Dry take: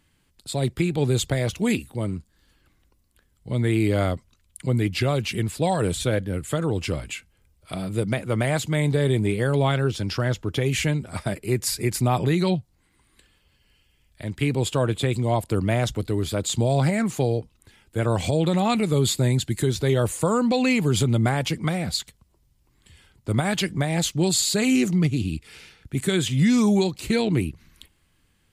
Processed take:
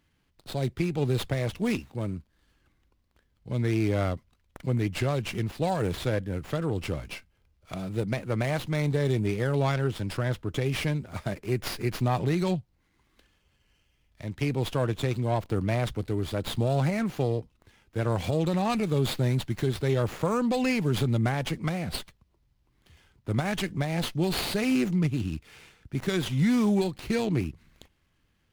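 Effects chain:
windowed peak hold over 5 samples
level −4.5 dB

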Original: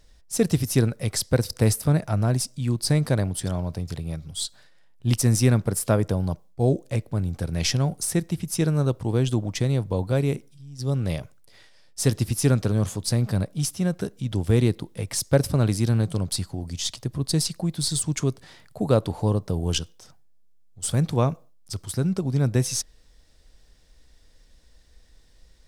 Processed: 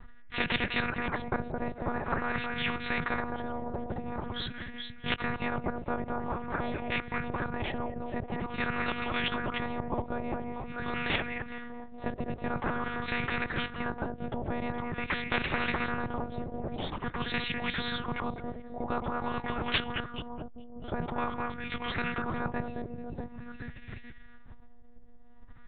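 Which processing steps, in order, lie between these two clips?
parametric band 460 Hz −14 dB 1.7 octaves
delay that swaps between a low-pass and a high-pass 213 ms, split 2,300 Hz, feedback 60%, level −8.5 dB
one-pitch LPC vocoder at 8 kHz 240 Hz
auto-filter low-pass sine 0.47 Hz 590–2,200 Hz
every bin compressed towards the loudest bin 4 to 1

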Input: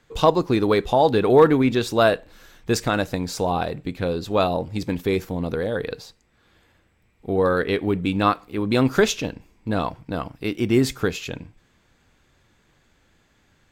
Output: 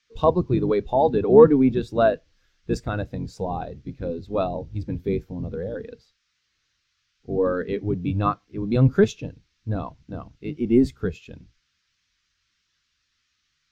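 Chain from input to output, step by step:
sub-octave generator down 1 octave, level −1 dB
noise in a band 1,200–6,300 Hz −49 dBFS
every bin expanded away from the loudest bin 1.5 to 1
level +1 dB

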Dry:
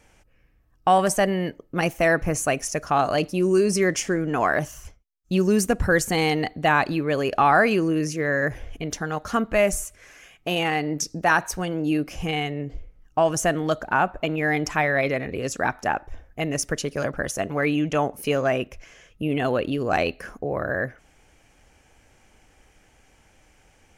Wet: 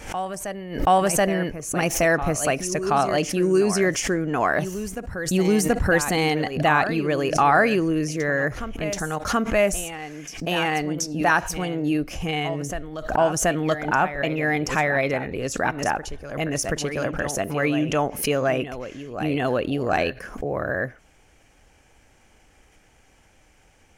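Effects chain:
on a send: backwards echo 729 ms −11 dB
on the sum: background raised ahead of every attack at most 100 dB per second

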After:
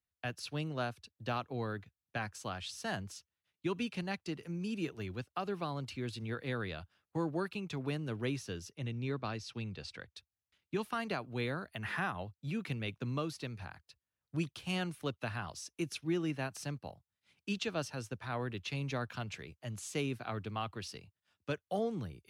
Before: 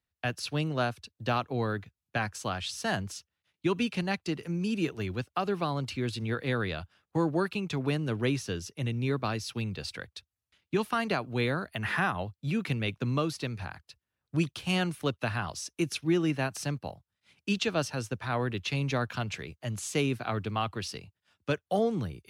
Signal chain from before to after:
0:08.75–0:10.16: low-pass filter 7,000 Hz 12 dB per octave
level −7.5 dB

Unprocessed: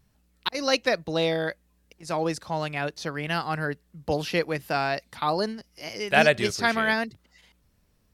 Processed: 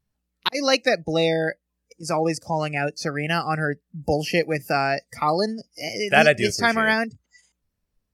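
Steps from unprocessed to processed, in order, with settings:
in parallel at +2.5 dB: downward compressor 4 to 1, threshold −38 dBFS, peak gain reduction 20 dB
on the sum: noise reduction from a noise print of the clip's start 22 dB
level +2 dB

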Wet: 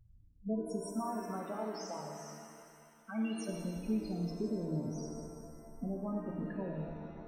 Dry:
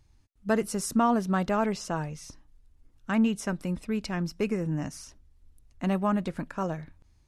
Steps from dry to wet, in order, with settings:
0:00.87–0:03.49: high-pass filter 850 Hz 6 dB per octave
dynamic equaliser 1,500 Hz, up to −6 dB, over −42 dBFS, Q 0.84
downward compressor, threshold −34 dBFS, peak gain reduction 13 dB
spectral peaks only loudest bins 8
reverb with rising layers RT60 2.3 s, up +7 semitones, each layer −8 dB, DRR 1 dB
level −1.5 dB

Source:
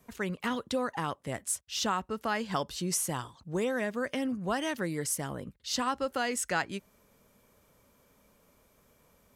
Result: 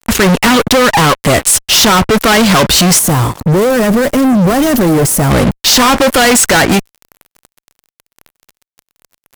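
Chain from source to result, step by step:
fuzz pedal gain 51 dB, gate −55 dBFS
0:02.99–0:05.31: parametric band 3,300 Hz −11 dB 2.9 octaves
level +6.5 dB

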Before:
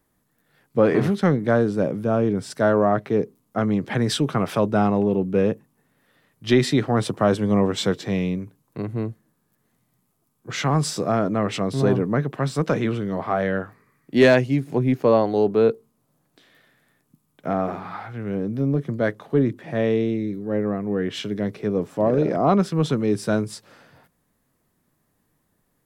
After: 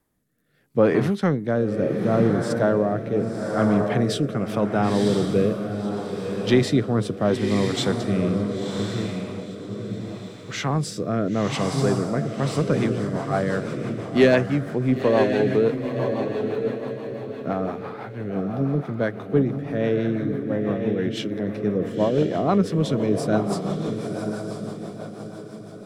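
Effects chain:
feedback delay with all-pass diffusion 992 ms, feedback 42%, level −5 dB
rotating-speaker cabinet horn 0.75 Hz, later 6 Hz, at 0:12.16

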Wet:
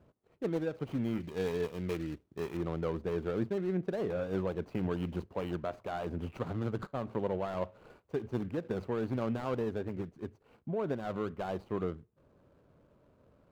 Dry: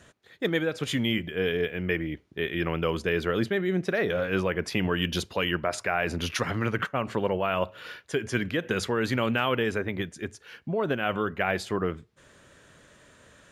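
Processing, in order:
running median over 25 samples
high-shelf EQ 2,400 Hz −8.5 dB, from 0:01.20 +2 dB, from 0:02.57 −10.5 dB
level −5.5 dB

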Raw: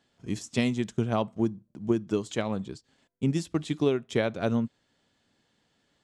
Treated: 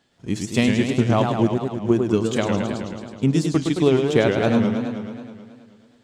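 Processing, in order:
in parallel at −11.5 dB: dead-zone distortion −43 dBFS
on the sum: feedback echo with a swinging delay time 107 ms, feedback 71%, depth 201 cents, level −5 dB
level +5 dB

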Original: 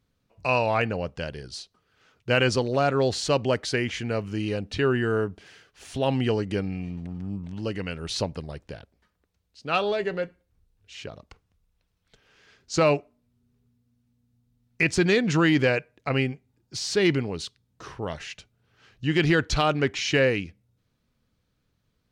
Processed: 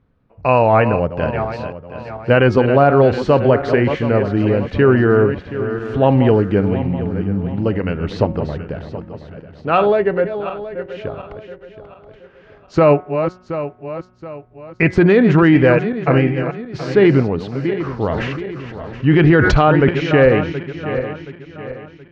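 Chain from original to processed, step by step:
feedback delay that plays each chunk backwards 362 ms, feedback 61%, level −10 dB
low-pass filter 1,500 Hz 12 dB per octave
hum removal 182.8 Hz, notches 12
boost into a limiter +13.5 dB
0:18.09–0:19.89: level that may fall only so fast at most 23 dB per second
level −1.5 dB

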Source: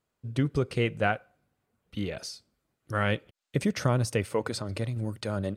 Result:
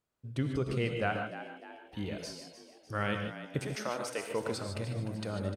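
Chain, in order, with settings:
0:03.59–0:04.31: high-pass filter 460 Hz 12 dB per octave
echo with shifted repeats 301 ms, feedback 46%, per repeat +74 Hz, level −12.5 dB
reverb whose tail is shaped and stops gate 170 ms rising, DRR 4.5 dB
level −6 dB

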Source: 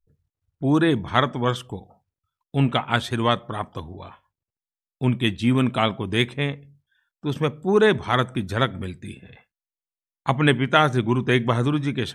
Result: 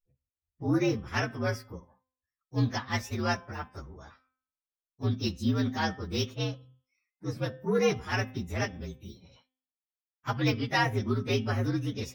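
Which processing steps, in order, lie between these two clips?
partials spread apart or drawn together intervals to 118%
noise reduction from a noise print of the clip's start 8 dB
hum removal 258.1 Hz, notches 14
level −6 dB

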